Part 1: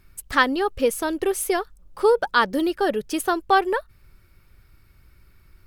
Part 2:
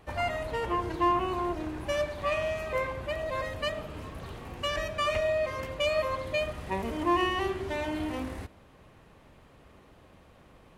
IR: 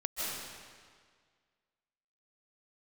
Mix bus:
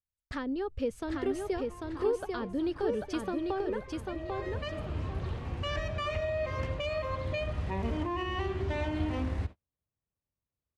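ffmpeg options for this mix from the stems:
-filter_complex "[0:a]acrossover=split=480[s0][s1];[s1]acompressor=threshold=0.0316:ratio=8[s2];[s0][s2]amix=inputs=2:normalize=0,volume=0.335,asplit=3[s3][s4][s5];[s4]volume=0.668[s6];[1:a]alimiter=level_in=1.19:limit=0.0631:level=0:latency=1:release=173,volume=0.841,adelay=1000,volume=0.891[s7];[s5]apad=whole_len=519260[s8];[s7][s8]sidechaincompress=threshold=0.00562:ratio=8:attack=7.3:release=1090[s9];[s6]aecho=0:1:793|1586|2379|3172:1|0.3|0.09|0.027[s10];[s3][s9][s10]amix=inputs=3:normalize=0,lowpass=5800,agate=range=0.00794:threshold=0.00501:ratio=16:detection=peak,equalizer=f=80:t=o:w=2:g=11"

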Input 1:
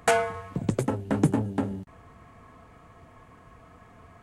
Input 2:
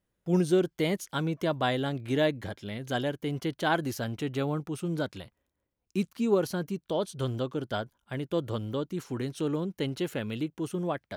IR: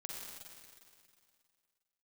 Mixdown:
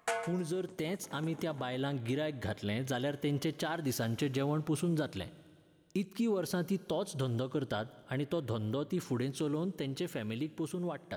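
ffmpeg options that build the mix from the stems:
-filter_complex "[0:a]highpass=f=560:p=1,volume=0.299,asplit=2[s0][s1];[s1]volume=0.211[s2];[1:a]acompressor=threshold=0.0355:ratio=6,alimiter=level_in=1.68:limit=0.0631:level=0:latency=1:release=307,volume=0.596,volume=1.06,asplit=3[s3][s4][s5];[s4]volume=0.2[s6];[s5]apad=whole_len=186200[s7];[s0][s7]sidechaincompress=threshold=0.00562:ratio=8:attack=16:release=839[s8];[2:a]atrim=start_sample=2205[s9];[s6][s9]afir=irnorm=-1:irlink=0[s10];[s2]aecho=0:1:155|310|465|620:1|0.25|0.0625|0.0156[s11];[s8][s3][s10][s11]amix=inputs=4:normalize=0,dynaudnorm=f=320:g=13:m=1.41"

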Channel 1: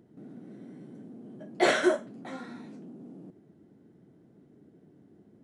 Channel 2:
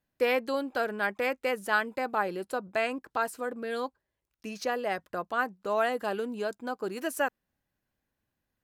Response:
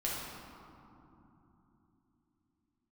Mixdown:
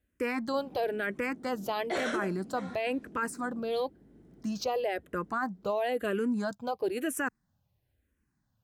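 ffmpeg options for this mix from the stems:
-filter_complex "[0:a]aeval=exprs='val(0)+0.000562*(sin(2*PI*50*n/s)+sin(2*PI*2*50*n/s)/2+sin(2*PI*3*50*n/s)/3+sin(2*PI*4*50*n/s)/4+sin(2*PI*5*50*n/s)/5)':c=same,adelay=300,volume=1.19[s0];[1:a]equalizer=f=82:w=0.52:g=13,asplit=2[s1][s2];[s2]afreqshift=-1[s3];[s1][s3]amix=inputs=2:normalize=1,volume=1.41,asplit=2[s4][s5];[s5]apad=whole_len=252907[s6];[s0][s6]sidechaincompress=threshold=0.0398:ratio=8:attack=5.2:release=982[s7];[s7][s4]amix=inputs=2:normalize=0,alimiter=limit=0.075:level=0:latency=1:release=11"

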